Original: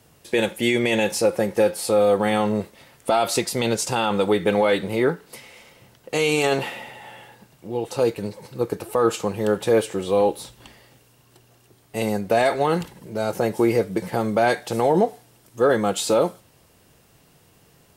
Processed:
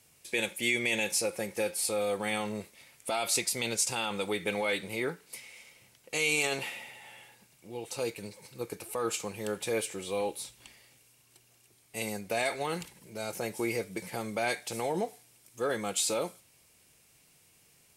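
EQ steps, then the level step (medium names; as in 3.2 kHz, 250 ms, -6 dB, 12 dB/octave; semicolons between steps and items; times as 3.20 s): low-pass 11 kHz 12 dB/octave; pre-emphasis filter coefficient 0.8; peaking EQ 2.3 kHz +9 dB 0.31 oct; 0.0 dB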